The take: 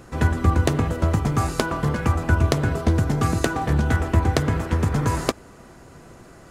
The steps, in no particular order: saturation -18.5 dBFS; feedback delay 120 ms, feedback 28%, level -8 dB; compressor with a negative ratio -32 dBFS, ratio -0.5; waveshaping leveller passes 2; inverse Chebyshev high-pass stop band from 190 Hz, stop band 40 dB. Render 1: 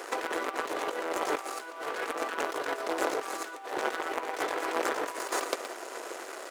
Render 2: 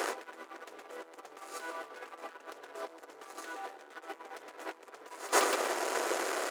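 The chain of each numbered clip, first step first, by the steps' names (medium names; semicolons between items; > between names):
feedback delay > waveshaping leveller > saturation > inverse Chebyshev high-pass > compressor with a negative ratio; waveshaping leveller > saturation > feedback delay > compressor with a negative ratio > inverse Chebyshev high-pass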